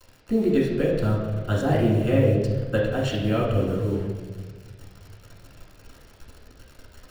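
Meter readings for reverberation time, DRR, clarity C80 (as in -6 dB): 1.4 s, -6.0 dB, 4.5 dB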